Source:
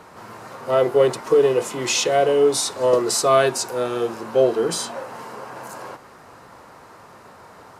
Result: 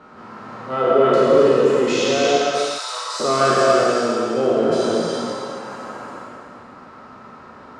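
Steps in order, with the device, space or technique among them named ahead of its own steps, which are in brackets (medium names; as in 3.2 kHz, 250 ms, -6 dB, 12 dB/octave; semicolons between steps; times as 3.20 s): spectral sustain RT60 2.32 s; inside a cardboard box (low-pass 4.3 kHz 12 dB/octave; small resonant body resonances 230/1300 Hz, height 10 dB, ringing for 35 ms); 2.37–3.20 s: high-pass 1 kHz 24 dB/octave; gated-style reverb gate 430 ms flat, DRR -2.5 dB; trim -6.5 dB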